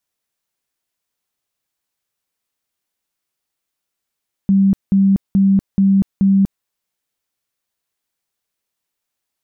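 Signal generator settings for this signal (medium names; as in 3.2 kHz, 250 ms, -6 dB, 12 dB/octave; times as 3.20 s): tone bursts 195 Hz, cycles 47, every 0.43 s, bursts 5, -9 dBFS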